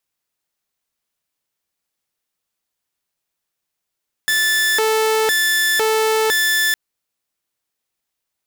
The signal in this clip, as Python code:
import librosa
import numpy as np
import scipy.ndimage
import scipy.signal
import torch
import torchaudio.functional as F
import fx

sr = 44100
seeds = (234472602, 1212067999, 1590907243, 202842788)

y = fx.siren(sr, length_s=2.46, kind='hi-lo', low_hz=439.0, high_hz=1750.0, per_s=0.99, wave='saw', level_db=-12.0)